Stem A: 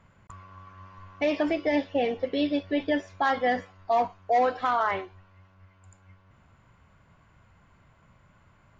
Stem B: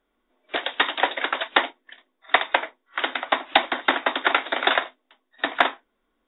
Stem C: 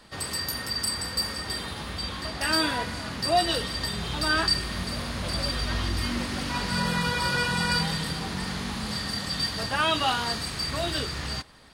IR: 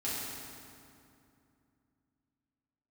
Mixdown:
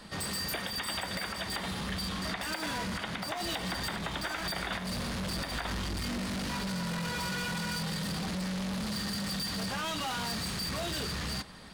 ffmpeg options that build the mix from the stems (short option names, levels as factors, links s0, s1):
-filter_complex "[1:a]acompressor=threshold=0.0316:ratio=3,volume=1.26[s0];[2:a]equalizer=f=190:t=o:w=0.3:g=11,alimiter=limit=0.126:level=0:latency=1:release=111,asoftclip=type=tanh:threshold=0.0168,volume=1.41[s1];[s0][s1]amix=inputs=2:normalize=0,alimiter=limit=0.0631:level=0:latency=1:release=115"